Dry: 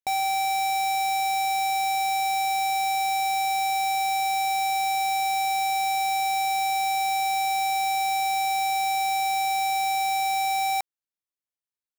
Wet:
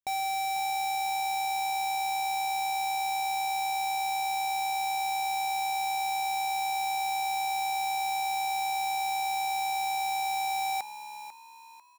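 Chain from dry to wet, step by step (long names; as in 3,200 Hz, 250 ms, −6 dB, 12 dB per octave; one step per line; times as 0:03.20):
on a send: echo with shifted repeats 495 ms, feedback 37%, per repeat +68 Hz, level −12.5 dB
on the sum: level −5.5 dB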